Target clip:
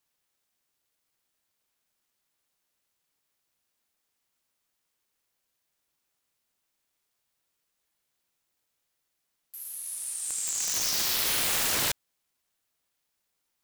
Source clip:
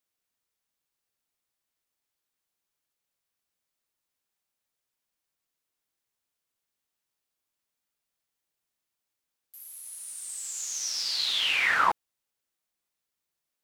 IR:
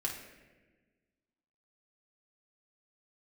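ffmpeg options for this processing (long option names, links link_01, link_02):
-af "aeval=exprs='(mod(23.7*val(0)+1,2)-1)/23.7':channel_layout=same,aeval=exprs='val(0)*sin(2*PI*420*n/s+420*0.45/3*sin(2*PI*3*n/s))':channel_layout=same,volume=8.5dB"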